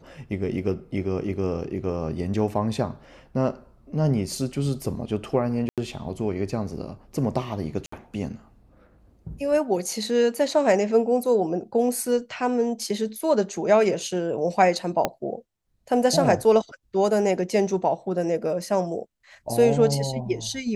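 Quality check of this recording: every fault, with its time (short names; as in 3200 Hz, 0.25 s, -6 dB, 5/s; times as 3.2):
5.69–5.78 gap 87 ms
7.86–7.92 gap 64 ms
15.05 pop -8 dBFS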